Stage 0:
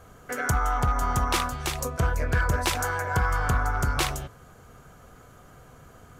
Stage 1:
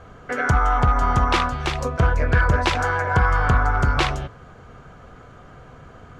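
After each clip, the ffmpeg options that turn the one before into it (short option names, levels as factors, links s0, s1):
-af "lowpass=3700,volume=2.11"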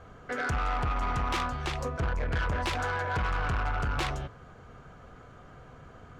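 -af "asoftclip=type=tanh:threshold=0.106,volume=0.501"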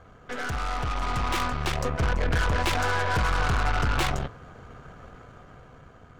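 -af "aeval=exprs='0.0531*(cos(1*acos(clip(val(0)/0.0531,-1,1)))-cos(1*PI/2))+0.0133*(cos(4*acos(clip(val(0)/0.0531,-1,1)))-cos(4*PI/2))':c=same,dynaudnorm=f=280:g=9:m=2,volume=0.841"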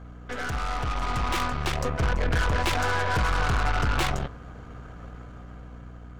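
-af "aeval=exprs='val(0)+0.00794*(sin(2*PI*60*n/s)+sin(2*PI*2*60*n/s)/2+sin(2*PI*3*60*n/s)/3+sin(2*PI*4*60*n/s)/4+sin(2*PI*5*60*n/s)/5)':c=same"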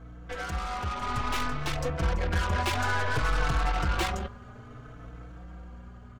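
-filter_complex "[0:a]asplit=2[s0][s1];[s1]adelay=4.1,afreqshift=0.59[s2];[s0][s2]amix=inputs=2:normalize=1"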